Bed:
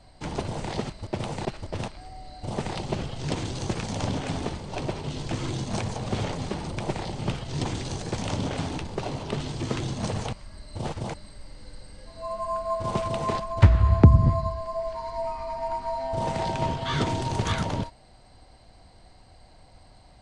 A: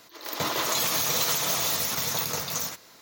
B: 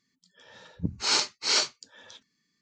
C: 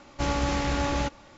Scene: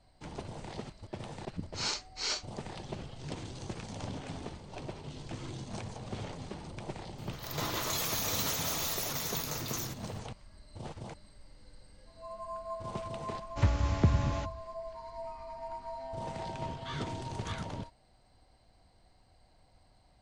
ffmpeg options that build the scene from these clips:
-filter_complex "[0:a]volume=0.266[s0];[2:a]atrim=end=2.61,asetpts=PTS-STARTPTS,volume=0.316,afade=t=in:d=0.004:c=hsin,afade=t=out:st=2.606:d=0.004:c=hsin,adelay=740[s1];[1:a]atrim=end=3.01,asetpts=PTS-STARTPTS,volume=0.398,afade=t=in:d=0.004:c=hsin,afade=t=out:st=3.006:d=0.004:c=hsin,adelay=7180[s2];[3:a]atrim=end=1.37,asetpts=PTS-STARTPTS,volume=0.266,afade=t=in:d=0.004:c=hsin,afade=t=out:st=1.366:d=0.004:c=hsin,adelay=13370[s3];[s0][s1][s2][s3]amix=inputs=4:normalize=0"

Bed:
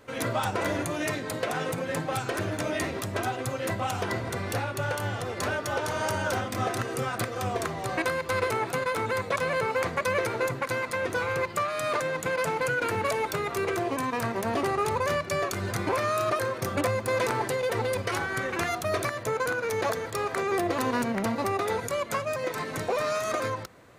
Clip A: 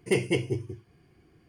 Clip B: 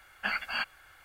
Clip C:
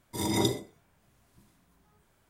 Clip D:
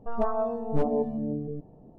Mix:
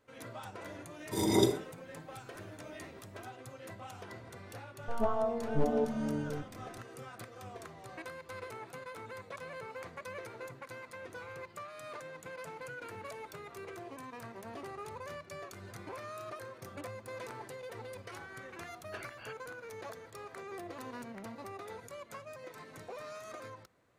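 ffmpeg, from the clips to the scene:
-filter_complex "[0:a]volume=0.133[s0];[3:a]equalizer=f=420:w=1.4:g=6.5[s1];[2:a]acrossover=split=3900[s2][s3];[s3]acompressor=threshold=0.00251:ratio=4:attack=1:release=60[s4];[s2][s4]amix=inputs=2:normalize=0[s5];[s1]atrim=end=2.29,asetpts=PTS-STARTPTS,volume=0.708,afade=t=in:d=0.004:c=hsin,afade=t=out:st=2.286:d=0.004:c=hsin,adelay=980[s6];[4:a]atrim=end=1.98,asetpts=PTS-STARTPTS,volume=0.631,afade=t=in:d=0.004:c=hsin,afade=t=out:st=1.976:d=0.004:c=hsin,adelay=4820[s7];[s5]atrim=end=1.04,asetpts=PTS-STARTPTS,volume=0.15,afade=t=in:d=0.004:c=hsin,afade=t=out:st=1.036:d=0.004:c=hsin,adelay=18690[s8];[s0][s6][s7][s8]amix=inputs=4:normalize=0"

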